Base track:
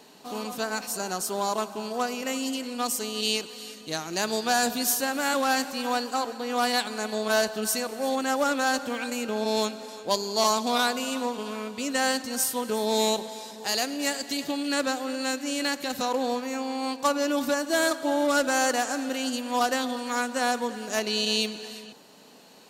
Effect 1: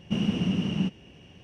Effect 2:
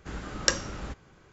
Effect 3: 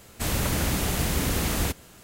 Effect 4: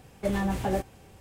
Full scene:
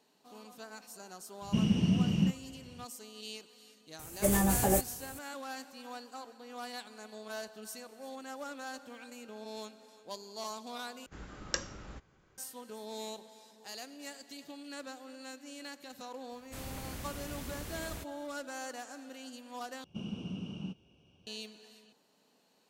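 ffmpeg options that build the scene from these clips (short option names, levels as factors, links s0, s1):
-filter_complex "[1:a]asplit=2[s0][s1];[0:a]volume=0.126[s2];[s0]bass=f=250:g=8,treble=f=4000:g=10[s3];[4:a]aexciter=amount=8.6:drive=3.6:freq=6200[s4];[s1]asuperstop=centerf=1900:order=4:qfactor=2.4[s5];[s2]asplit=3[s6][s7][s8];[s6]atrim=end=11.064[s9];[2:a]atrim=end=1.32,asetpts=PTS-STARTPTS,volume=0.316[s10];[s7]atrim=start=12.376:end=19.844[s11];[s5]atrim=end=1.43,asetpts=PTS-STARTPTS,volume=0.2[s12];[s8]atrim=start=21.266[s13];[s3]atrim=end=1.43,asetpts=PTS-STARTPTS,volume=0.447,afade=t=in:d=0.004:c=hsin,afade=t=out:st=1.426:d=0.004:c=hsin,adelay=1420[s14];[s4]atrim=end=1.2,asetpts=PTS-STARTPTS,volume=0.944,afade=t=in:d=0.004:c=hsin,afade=t=out:st=1.196:d=0.004:c=hsin,adelay=3990[s15];[3:a]atrim=end=2.03,asetpts=PTS-STARTPTS,volume=0.133,afade=t=in:d=0.004:c=hsin,afade=t=out:st=2.026:d=0.004:c=hsin,adelay=16320[s16];[s9][s10]acrossfade=d=0.004:c1=hsin:c2=hsin[s17];[s17][s11]acrossfade=d=0.004:c1=hsin:c2=hsin[s18];[s18][s12]acrossfade=d=0.004:c1=hsin:c2=hsin[s19];[s19][s13]acrossfade=d=0.004:c1=hsin:c2=hsin[s20];[s20][s14][s15][s16]amix=inputs=4:normalize=0"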